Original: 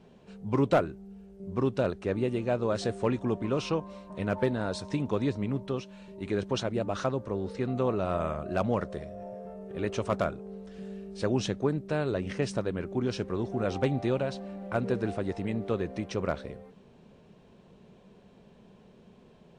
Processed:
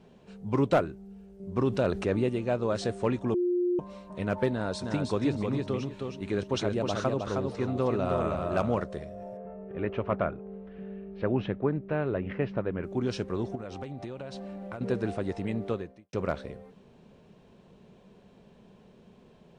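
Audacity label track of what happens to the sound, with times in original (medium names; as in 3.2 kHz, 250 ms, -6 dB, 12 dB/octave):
1.560000	2.290000	level flattener amount 50%
3.340000	3.790000	bleep 355 Hz -23.5 dBFS
4.510000	8.820000	feedback delay 314 ms, feedback 22%, level -4 dB
9.370000	12.840000	low-pass 2.6 kHz 24 dB/octave
13.550000	14.810000	compression 12:1, threshold -34 dBFS
15.690000	16.130000	fade out quadratic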